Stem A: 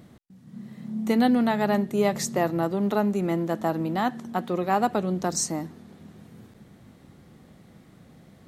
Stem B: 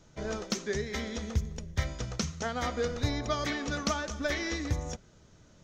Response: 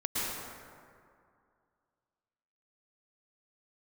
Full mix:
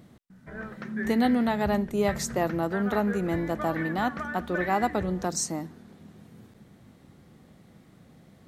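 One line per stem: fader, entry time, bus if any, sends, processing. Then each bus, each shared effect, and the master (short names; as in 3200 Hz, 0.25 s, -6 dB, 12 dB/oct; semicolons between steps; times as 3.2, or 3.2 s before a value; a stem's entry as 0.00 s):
-2.5 dB, 0.00 s, no send, dry
-8.0 dB, 0.30 s, no send, synth low-pass 1700 Hz, resonance Q 4.7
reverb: off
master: dry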